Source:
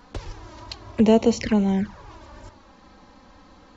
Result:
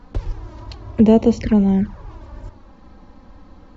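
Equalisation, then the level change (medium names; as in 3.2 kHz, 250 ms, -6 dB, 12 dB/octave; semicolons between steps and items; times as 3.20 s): tilt EQ -2.5 dB/octave; 0.0 dB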